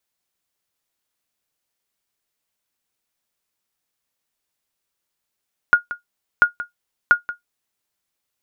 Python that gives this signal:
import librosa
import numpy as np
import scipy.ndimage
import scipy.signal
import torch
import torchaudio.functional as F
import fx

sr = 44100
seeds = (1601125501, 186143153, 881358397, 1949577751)

y = fx.sonar_ping(sr, hz=1430.0, decay_s=0.13, every_s=0.69, pings=3, echo_s=0.18, echo_db=-15.5, level_db=-3.0)